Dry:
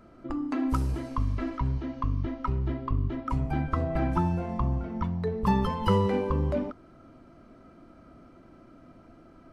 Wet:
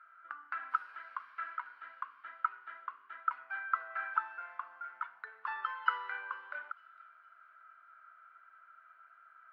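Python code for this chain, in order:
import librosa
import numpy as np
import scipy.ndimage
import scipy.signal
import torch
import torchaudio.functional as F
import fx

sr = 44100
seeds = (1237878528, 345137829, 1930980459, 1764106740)

y = fx.ladder_highpass(x, sr, hz=1400.0, resonance_pct=85)
y = fx.air_absorb(y, sr, metres=440.0)
y = fx.echo_wet_highpass(y, sr, ms=456, feedback_pct=35, hz=3500.0, wet_db=-12.5)
y = y * 10.0 ** (8.5 / 20.0)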